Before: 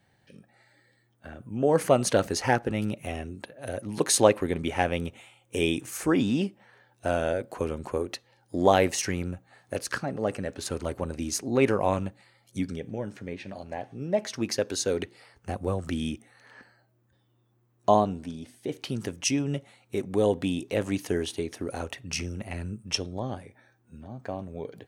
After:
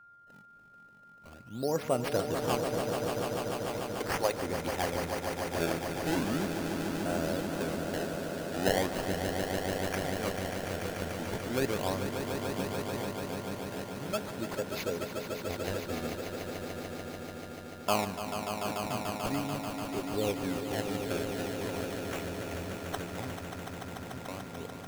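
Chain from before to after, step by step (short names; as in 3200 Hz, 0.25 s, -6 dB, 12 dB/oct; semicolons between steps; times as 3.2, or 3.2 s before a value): 2.67–4.35 weighting filter A; decimation with a swept rate 25×, swing 160% 0.39 Hz; whine 1400 Hz -45 dBFS; swelling echo 0.146 s, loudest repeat 5, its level -8 dB; gain -8.5 dB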